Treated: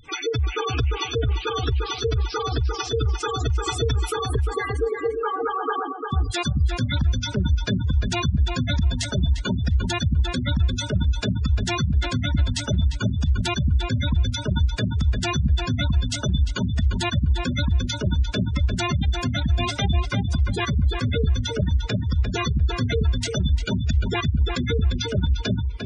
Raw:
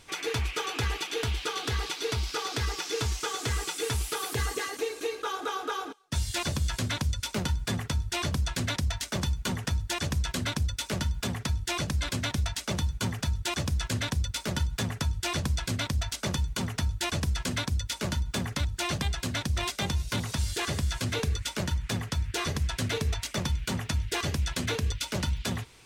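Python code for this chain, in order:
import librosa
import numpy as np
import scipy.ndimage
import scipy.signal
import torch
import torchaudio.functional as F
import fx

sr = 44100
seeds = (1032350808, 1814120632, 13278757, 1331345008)

y = fx.spec_gate(x, sr, threshold_db=-10, keep='strong')
y = fx.echo_filtered(y, sr, ms=349, feedback_pct=16, hz=2400.0, wet_db=-4.5)
y = fx.band_squash(y, sr, depth_pct=70, at=(3.66, 4.19))
y = y * librosa.db_to_amplitude(8.0)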